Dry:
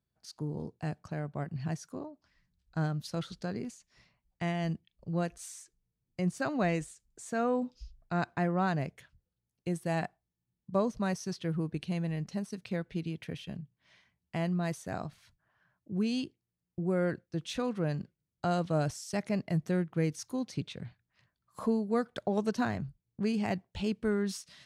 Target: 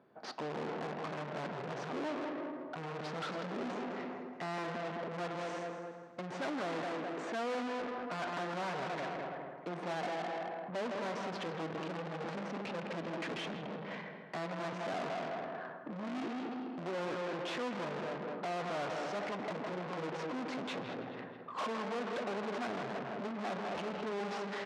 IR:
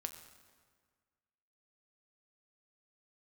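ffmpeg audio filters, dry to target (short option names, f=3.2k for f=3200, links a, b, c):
-filter_complex "[0:a]alimiter=level_in=4dB:limit=-24dB:level=0:latency=1,volume=-4dB,asplit=2[a][b];[b]aecho=0:1:212|424|636:0.158|0.0507|0.0162[c];[a][c]amix=inputs=2:normalize=0,aeval=exprs='(tanh(200*val(0)+0.3)-tanh(0.3))/200':c=same,adynamicsmooth=sensitivity=7:basefreq=880,asplit=2[d][e];[e]adelay=161,lowpass=f=3.9k:p=1,volume=-12dB,asplit=2[f][g];[g]adelay=161,lowpass=f=3.9k:p=1,volume=0.49,asplit=2[h][i];[i]adelay=161,lowpass=f=3.9k:p=1,volume=0.49,asplit=2[j][k];[k]adelay=161,lowpass=f=3.9k:p=1,volume=0.49,asplit=2[l][m];[m]adelay=161,lowpass=f=3.9k:p=1,volume=0.49[n];[d][f][h][j][l][n]amix=inputs=6:normalize=0,asplit=2[o][p];[1:a]atrim=start_sample=2205[q];[p][q]afir=irnorm=-1:irlink=0,volume=-4.5dB[r];[o][r]amix=inputs=2:normalize=0,asplit=2[s][t];[t]highpass=f=720:p=1,volume=35dB,asoftclip=type=tanh:threshold=-36.5dB[u];[s][u]amix=inputs=2:normalize=0,lowpass=f=4.7k:p=1,volume=-6dB,highpass=270,lowpass=7.5k,volume=6dB"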